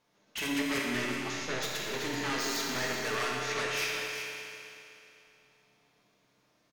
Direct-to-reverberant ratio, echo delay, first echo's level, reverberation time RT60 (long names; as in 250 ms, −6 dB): −3.5 dB, 380 ms, −7.5 dB, 2.8 s